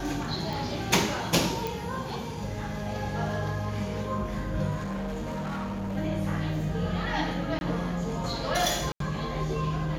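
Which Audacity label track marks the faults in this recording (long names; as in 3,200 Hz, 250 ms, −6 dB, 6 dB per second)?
0.530000	0.530000	click
1.670000	1.670000	click
4.760000	5.970000	clipping −29.5 dBFS
7.590000	7.610000	drop-out 21 ms
8.920000	9.000000	drop-out 83 ms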